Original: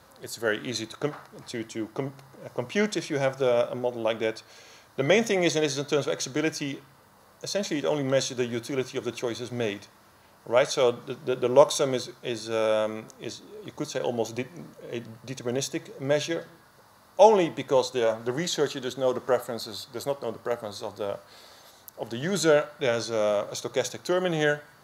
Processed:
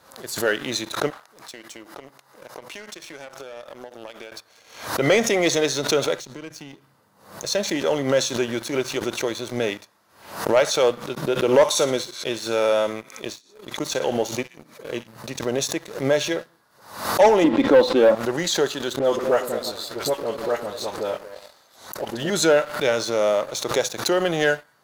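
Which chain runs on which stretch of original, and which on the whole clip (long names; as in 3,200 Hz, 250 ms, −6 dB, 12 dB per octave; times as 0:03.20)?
0:01.10–0:04.32: high-pass filter 460 Hz 6 dB per octave + downward compressor 10 to 1, threshold −37 dBFS
0:06.19–0:07.45: high-pass filter 110 Hz + low-shelf EQ 250 Hz +12 dB + downward compressor 3 to 1, threshold −41 dBFS
0:11.15–0:15.07: downward expander −38 dBFS + delay with a high-pass on its return 61 ms, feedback 37%, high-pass 1,600 Hz, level −9.5 dB
0:17.44–0:18.15: low-pass filter 4,200 Hz 24 dB per octave + parametric band 270 Hz +11 dB 1.8 octaves + comb filter 3.7 ms, depth 48%
0:18.99–0:22.30: all-pass dispersion highs, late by 53 ms, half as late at 1,100 Hz + echo through a band-pass that steps 112 ms, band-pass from 290 Hz, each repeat 0.7 octaves, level −7.5 dB
whole clip: low-shelf EQ 160 Hz −10.5 dB; leveller curve on the samples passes 2; background raised ahead of every attack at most 99 dB per second; level −2 dB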